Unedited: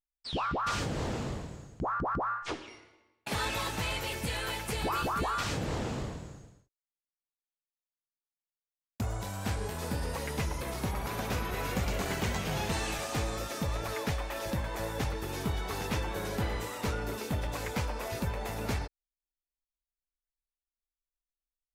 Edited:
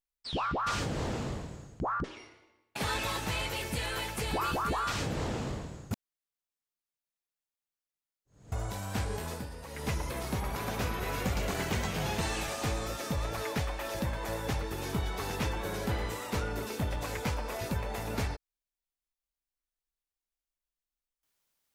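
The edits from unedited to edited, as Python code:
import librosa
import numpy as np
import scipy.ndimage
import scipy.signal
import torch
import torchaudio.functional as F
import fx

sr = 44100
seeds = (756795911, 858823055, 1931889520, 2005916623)

y = fx.edit(x, sr, fx.cut(start_s=2.04, length_s=0.51),
    fx.reverse_span(start_s=6.42, length_s=2.61),
    fx.fade_down_up(start_s=9.79, length_s=0.6, db=-10.0, fade_s=0.28, curve='qua'), tone=tone)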